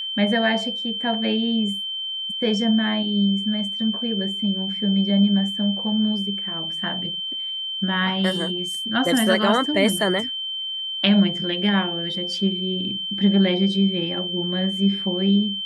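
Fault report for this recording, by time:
tone 3100 Hz -26 dBFS

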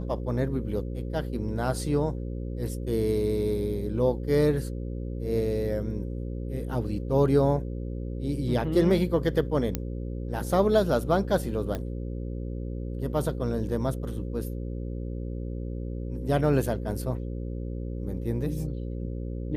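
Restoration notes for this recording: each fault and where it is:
buzz 60 Hz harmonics 9 -33 dBFS
9.75 pop -12 dBFS
11.75 pop -18 dBFS

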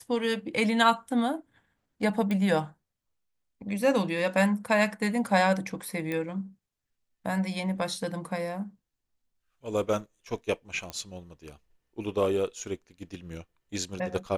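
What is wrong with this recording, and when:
2.31 pop -19 dBFS
6.12 pop -19 dBFS
10.9 pop -20 dBFS

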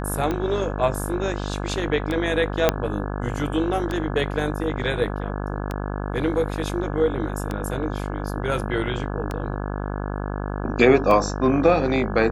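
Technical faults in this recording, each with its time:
buzz 50 Hz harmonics 34 -28 dBFS
tick 33 1/3 rpm -13 dBFS
2.69 pop -2 dBFS

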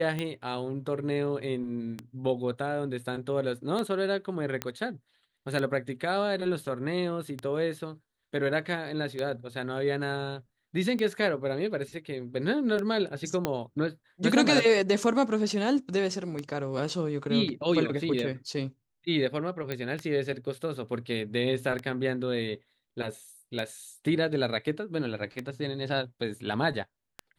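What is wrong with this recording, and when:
tick 33 1/3 rpm -19 dBFS
4.62 pop -14 dBFS
13.45 pop -12 dBFS
19.72 pop -18 dBFS

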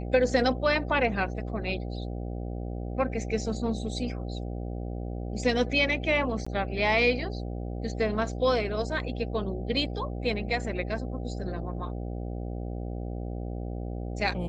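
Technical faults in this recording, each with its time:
buzz 60 Hz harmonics 13 -34 dBFS
6.45–6.46 gap 15 ms

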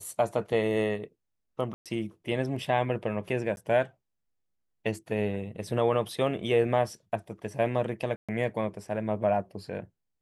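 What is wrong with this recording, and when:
1.74–1.86 gap 0.117 s
3.56–3.57 gap 11 ms
8.16–8.29 gap 0.126 s

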